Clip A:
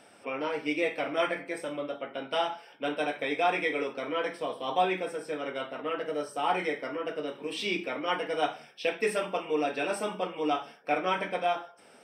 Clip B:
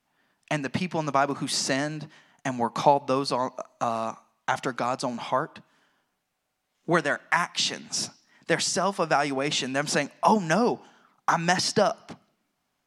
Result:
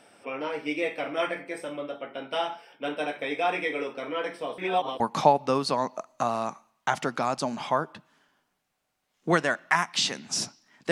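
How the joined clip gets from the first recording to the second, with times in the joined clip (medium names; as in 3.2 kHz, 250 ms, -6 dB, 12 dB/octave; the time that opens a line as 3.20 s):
clip A
4.58–5.00 s: reverse
5.00 s: go over to clip B from 2.61 s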